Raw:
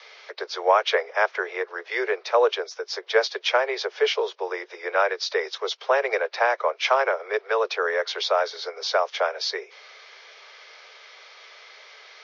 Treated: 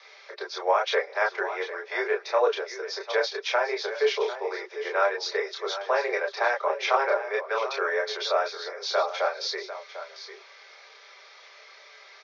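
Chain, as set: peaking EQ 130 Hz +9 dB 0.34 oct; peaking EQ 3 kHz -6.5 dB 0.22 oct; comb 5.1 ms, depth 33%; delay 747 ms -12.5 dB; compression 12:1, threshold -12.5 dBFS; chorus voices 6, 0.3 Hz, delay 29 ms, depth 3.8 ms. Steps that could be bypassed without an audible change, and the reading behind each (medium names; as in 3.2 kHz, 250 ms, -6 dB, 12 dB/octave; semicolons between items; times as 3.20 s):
peaking EQ 130 Hz: input has nothing below 340 Hz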